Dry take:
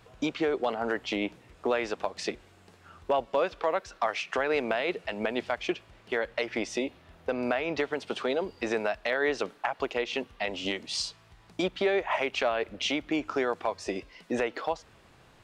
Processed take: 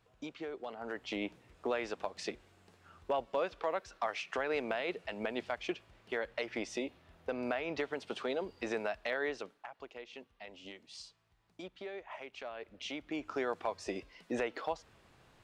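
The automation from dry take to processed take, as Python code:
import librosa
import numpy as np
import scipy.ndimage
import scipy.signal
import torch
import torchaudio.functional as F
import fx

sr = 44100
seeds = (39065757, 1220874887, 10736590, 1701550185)

y = fx.gain(x, sr, db=fx.line((0.69, -14.5), (1.18, -7.0), (9.18, -7.0), (9.68, -18.0), (12.37, -18.0), (13.52, -6.0)))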